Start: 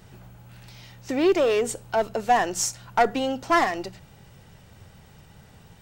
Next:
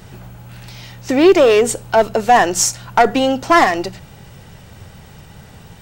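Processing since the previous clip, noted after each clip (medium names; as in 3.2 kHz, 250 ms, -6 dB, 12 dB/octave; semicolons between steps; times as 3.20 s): loudness maximiser +11.5 dB; trim -1 dB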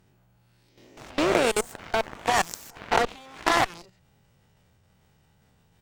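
reverse spectral sustain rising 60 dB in 0.97 s; level held to a coarse grid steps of 10 dB; Chebyshev shaper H 3 -12 dB, 5 -22 dB, 6 -27 dB, 7 -19 dB, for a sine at 1 dBFS; trim -5.5 dB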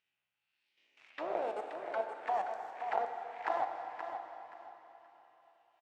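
auto-wah 720–2700 Hz, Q 3, down, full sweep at -21 dBFS; feedback delay 526 ms, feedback 25%, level -8 dB; plate-style reverb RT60 3.6 s, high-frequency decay 0.95×, DRR 5 dB; trim -7.5 dB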